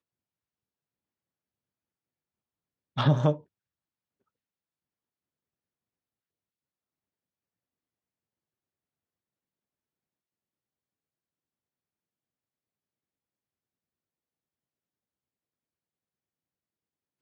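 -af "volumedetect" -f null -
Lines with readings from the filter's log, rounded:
mean_volume: -39.2 dB
max_volume: -12.2 dB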